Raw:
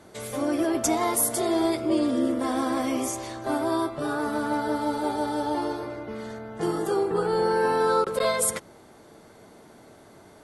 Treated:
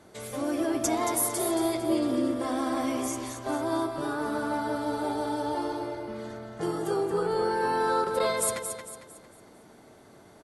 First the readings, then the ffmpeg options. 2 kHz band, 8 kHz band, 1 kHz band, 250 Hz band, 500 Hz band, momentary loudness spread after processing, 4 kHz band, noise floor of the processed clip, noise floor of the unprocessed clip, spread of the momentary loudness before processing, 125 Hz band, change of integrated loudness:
−2.5 dB, −2.5 dB, −2.5 dB, −3.0 dB, −3.0 dB, 10 LU, −2.5 dB, −54 dBFS, −51 dBFS, 9 LU, −2.5 dB, −3.0 dB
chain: -af "aecho=1:1:226|452|678|904|1130:0.422|0.169|0.0675|0.027|0.0108,volume=-3.5dB"

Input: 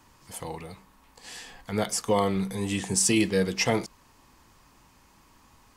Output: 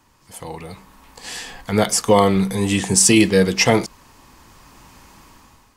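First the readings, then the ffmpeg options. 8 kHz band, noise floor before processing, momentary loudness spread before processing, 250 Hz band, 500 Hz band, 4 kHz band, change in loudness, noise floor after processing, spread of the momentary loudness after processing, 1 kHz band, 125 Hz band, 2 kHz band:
+9.5 dB, −59 dBFS, 20 LU, +9.5 dB, +9.5 dB, +9.5 dB, +10.0 dB, −56 dBFS, 21 LU, +10.0 dB, +9.5 dB, +9.5 dB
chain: -af "dynaudnorm=framelen=310:gausssize=5:maxgain=13.5dB"

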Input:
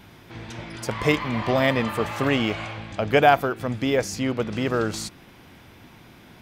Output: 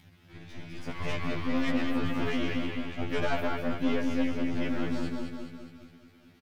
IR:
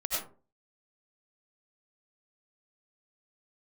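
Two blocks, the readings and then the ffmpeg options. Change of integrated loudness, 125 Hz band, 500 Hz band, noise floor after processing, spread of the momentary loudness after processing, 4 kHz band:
−8.5 dB, −8.5 dB, −11.5 dB, −58 dBFS, 16 LU, −9.0 dB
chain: -filter_complex "[0:a]asplit=2[link_01][link_02];[link_02]adelay=215,lowpass=frequency=1100:poles=1,volume=-8dB,asplit=2[link_03][link_04];[link_04]adelay=215,lowpass=frequency=1100:poles=1,volume=0.46,asplit=2[link_05][link_06];[link_06]adelay=215,lowpass=frequency=1100:poles=1,volume=0.46,asplit=2[link_07][link_08];[link_08]adelay=215,lowpass=frequency=1100:poles=1,volume=0.46,asplit=2[link_09][link_10];[link_10]adelay=215,lowpass=frequency=1100:poles=1,volume=0.46[link_11];[link_03][link_05][link_07][link_09][link_11]amix=inputs=5:normalize=0[link_12];[link_01][link_12]amix=inputs=2:normalize=0,asoftclip=type=tanh:threshold=-13dB,flanger=delay=9.9:depth=6.6:regen=62:speed=0.87:shape=sinusoidal,aeval=exprs='sgn(val(0))*max(abs(val(0))-0.00251,0)':channel_layout=same,acrossover=split=3300[link_13][link_14];[link_14]acompressor=threshold=-47dB:ratio=4:attack=1:release=60[link_15];[link_13][link_15]amix=inputs=2:normalize=0,asplit=2[link_16][link_17];[link_17]aecho=0:1:207|414|621|828|1035|1242|1449|1656:0.501|0.296|0.174|0.103|0.0607|0.0358|0.0211|0.0125[link_18];[link_16][link_18]amix=inputs=2:normalize=0,acompressor=mode=upward:threshold=-48dB:ratio=2.5,equalizer=frequency=125:width_type=o:width=1:gain=9,equalizer=frequency=500:width_type=o:width=1:gain=-5,equalizer=frequency=1000:width_type=o:width=1:gain=-7,equalizer=frequency=8000:width_type=o:width=1:gain=-5,aeval=exprs='0.224*(cos(1*acos(clip(val(0)/0.224,-1,1)))-cos(1*PI/2))+0.0251*(cos(8*acos(clip(val(0)/0.224,-1,1)))-cos(8*PI/2))':channel_layout=same,highshelf=frequency=7000:gain=-4.5,afftfilt=real='re*2*eq(mod(b,4),0)':imag='im*2*eq(mod(b,4),0)':win_size=2048:overlap=0.75"

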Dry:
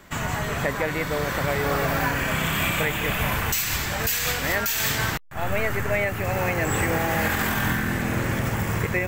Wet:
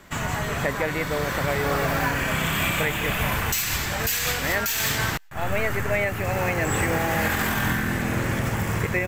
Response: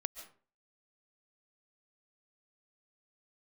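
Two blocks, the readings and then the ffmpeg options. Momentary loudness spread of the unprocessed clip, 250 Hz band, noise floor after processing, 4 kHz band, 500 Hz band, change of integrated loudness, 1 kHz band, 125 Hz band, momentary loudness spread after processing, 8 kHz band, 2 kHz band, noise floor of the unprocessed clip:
3 LU, 0.0 dB, −30 dBFS, +0.5 dB, 0.0 dB, 0.0 dB, 0.0 dB, 0.0 dB, 3 LU, +0.5 dB, 0.0 dB, −30 dBFS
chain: -filter_complex "[0:a]asplit=2[link_01][link_02];[link_02]aderivative[link_03];[1:a]atrim=start_sample=2205,asetrate=57330,aresample=44100,highshelf=frequency=4600:gain=-10.5[link_04];[link_03][link_04]afir=irnorm=-1:irlink=0,volume=-13dB[link_05];[link_01][link_05]amix=inputs=2:normalize=0,aresample=32000,aresample=44100"

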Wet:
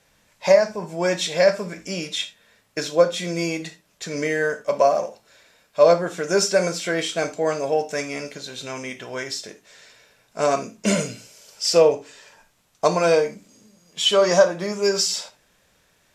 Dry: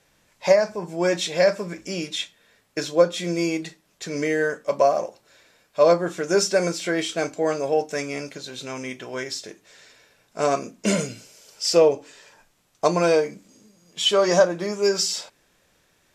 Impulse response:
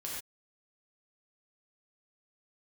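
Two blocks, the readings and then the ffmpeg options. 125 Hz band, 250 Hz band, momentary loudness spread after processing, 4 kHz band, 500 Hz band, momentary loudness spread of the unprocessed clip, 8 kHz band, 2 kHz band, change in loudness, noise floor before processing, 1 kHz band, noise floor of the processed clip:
+0.5 dB, −1.0 dB, 15 LU, +1.5 dB, +1.5 dB, 15 LU, +2.0 dB, +1.5 dB, +1.5 dB, −64 dBFS, +1.5 dB, −63 dBFS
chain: -filter_complex "[0:a]equalizer=frequency=330:width=3:gain=-5,asplit=2[link_01][link_02];[1:a]atrim=start_sample=2205,asetrate=74970,aresample=44100[link_03];[link_02][link_03]afir=irnorm=-1:irlink=0,volume=-4.5dB[link_04];[link_01][link_04]amix=inputs=2:normalize=0"

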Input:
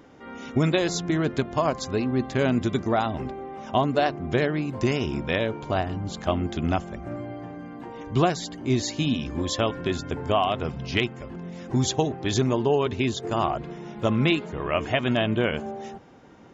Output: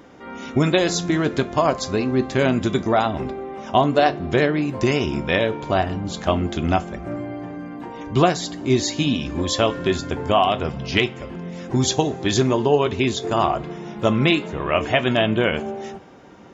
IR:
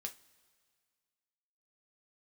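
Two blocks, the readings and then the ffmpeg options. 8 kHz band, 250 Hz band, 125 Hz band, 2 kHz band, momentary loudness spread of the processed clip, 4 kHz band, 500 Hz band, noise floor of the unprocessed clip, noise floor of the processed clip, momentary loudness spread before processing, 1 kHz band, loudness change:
can't be measured, +4.0 dB, +3.0 dB, +5.5 dB, 13 LU, +5.5 dB, +5.5 dB, −41 dBFS, −37 dBFS, 13 LU, +5.5 dB, +4.5 dB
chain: -filter_complex "[0:a]asplit=2[link_01][link_02];[1:a]atrim=start_sample=2205,lowshelf=frequency=120:gain=-9.5[link_03];[link_02][link_03]afir=irnorm=-1:irlink=0,volume=3dB[link_04];[link_01][link_04]amix=inputs=2:normalize=0"

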